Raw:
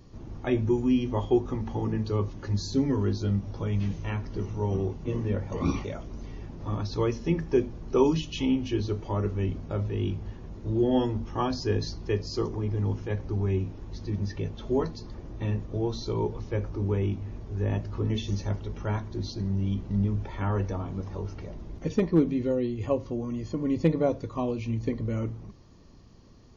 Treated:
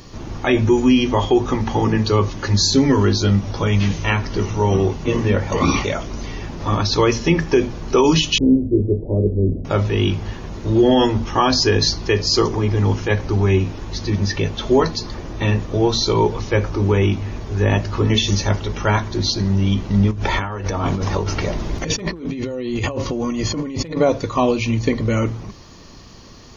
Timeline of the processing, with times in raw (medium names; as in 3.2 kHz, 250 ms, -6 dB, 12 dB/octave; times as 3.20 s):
8.38–9.65 s: steep low-pass 550 Hz
20.11–23.97 s: compressor with a negative ratio -35 dBFS
whole clip: tilt shelf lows -5.5 dB, about 760 Hz; hum notches 60/120 Hz; loudness maximiser +20 dB; trim -4.5 dB